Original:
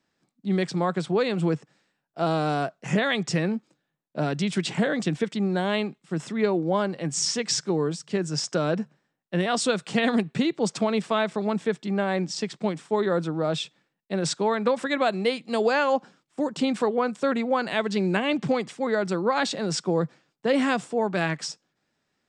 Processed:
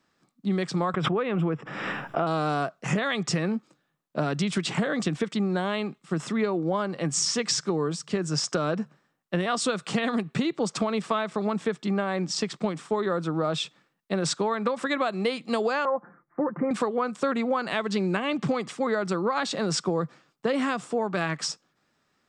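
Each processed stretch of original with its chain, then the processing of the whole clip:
0.94–2.27 polynomial smoothing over 25 samples + backwards sustainer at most 38 dB/s
15.85–16.71 steep low-pass 2000 Hz 72 dB/oct + comb 5.8 ms, depth 48%
whole clip: bell 1200 Hz +7.5 dB 0.35 oct; compressor, threshold -26 dBFS; gain +3.5 dB

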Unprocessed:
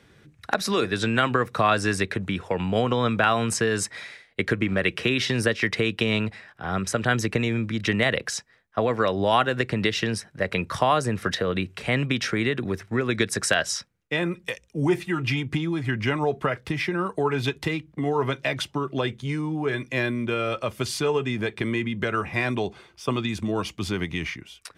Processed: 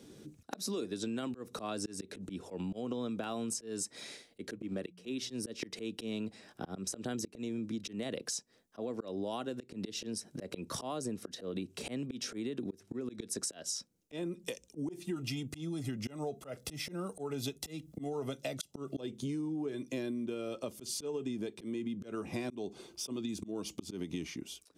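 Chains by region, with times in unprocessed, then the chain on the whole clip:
4.52–5.3 expander -24 dBFS + notches 60/120/180 Hz
15.16–19.01 high shelf 7100 Hz +9 dB + comb 1.5 ms, depth 50%
whole clip: EQ curve 110 Hz 0 dB, 270 Hz +15 dB, 1900 Hz -6 dB, 2800 Hz +2 dB, 6300 Hz +13 dB; auto swell 0.3 s; compressor 6:1, threshold -29 dBFS; gain -6.5 dB

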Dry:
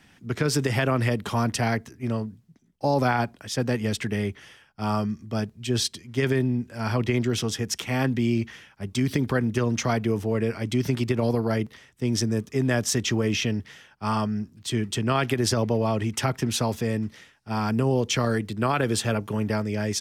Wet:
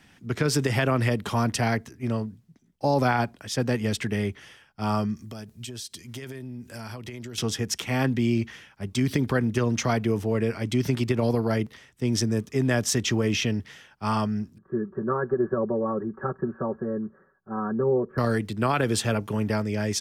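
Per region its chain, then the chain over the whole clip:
5.16–7.38 high shelf 5500 Hz +12 dB + compressor 16:1, threshold -33 dBFS
14.58–18.18 rippled Chebyshev low-pass 1700 Hz, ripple 9 dB + comb 5.3 ms, depth 94%
whole clip: dry

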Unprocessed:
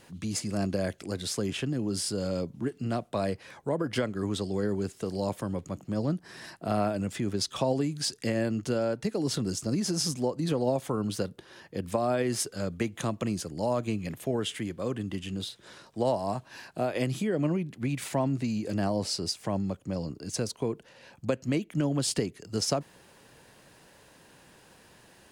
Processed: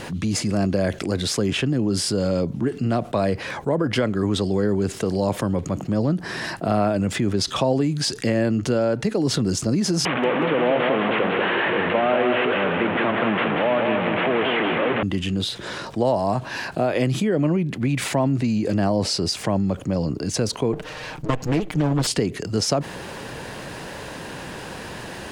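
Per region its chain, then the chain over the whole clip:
10.05–15.03 delta modulation 16 kbps, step -24.5 dBFS + HPF 270 Hz + feedback echo 0.187 s, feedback 39%, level -5 dB
20.73–22.07 minimum comb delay 6.5 ms + Doppler distortion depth 0.15 ms
whole clip: de-esser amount 45%; LPF 3900 Hz 6 dB/oct; fast leveller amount 50%; gain +6 dB

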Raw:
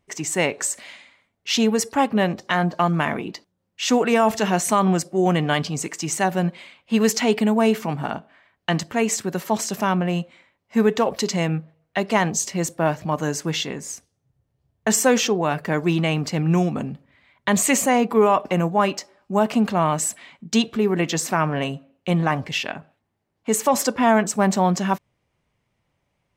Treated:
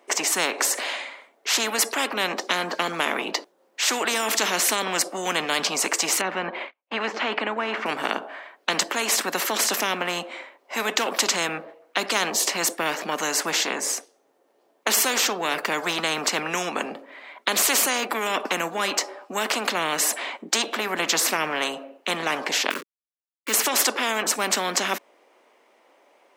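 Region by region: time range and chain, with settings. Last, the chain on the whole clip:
6.21–7.86 de-esser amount 80% + LPF 2100 Hz + gate -47 dBFS, range -42 dB
22.7–23.54 level-crossing sampler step -38 dBFS + Butterworth band-stop 740 Hz, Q 0.92
whole clip: Bessel high-pass 560 Hz, order 8; tilt shelf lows +7 dB, about 1100 Hz; spectral compressor 4:1; gain +2.5 dB

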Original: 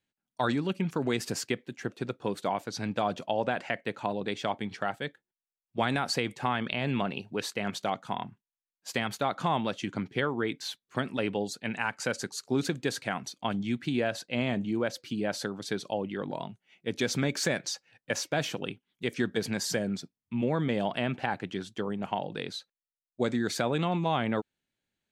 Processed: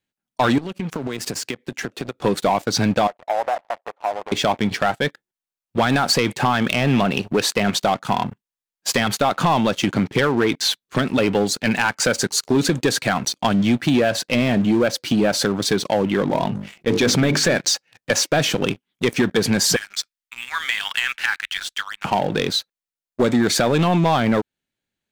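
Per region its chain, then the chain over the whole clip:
0.58–2.18 HPF 82 Hz 24 dB/oct + compressor 16:1, threshold -41 dBFS
3.07–4.32 switching dead time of 0.29 ms + ladder band-pass 830 Hz, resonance 55%
16.27–17.58 LPF 3800 Hz 6 dB/oct + notches 50/100/150/200/250/300/350/400/450 Hz + sustainer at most 70 dB/s
19.76–22.05 inverse Chebyshev band-stop 100–610 Hz, stop band 50 dB + bell 330 Hz +9.5 dB 1.5 oct
whole clip: compressor 2:1, threshold -34 dBFS; sample leveller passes 3; gain +7.5 dB

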